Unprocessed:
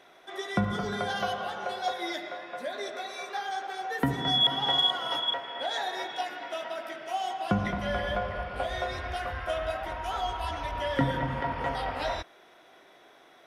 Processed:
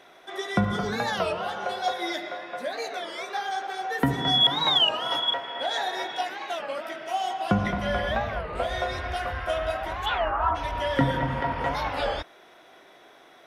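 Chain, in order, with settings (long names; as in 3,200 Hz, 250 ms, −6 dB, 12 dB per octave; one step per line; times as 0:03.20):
0:10.07–0:10.54: low-pass with resonance 3,000 Hz → 1,100 Hz, resonance Q 5.3
wow of a warped record 33 1/3 rpm, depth 250 cents
level +3.5 dB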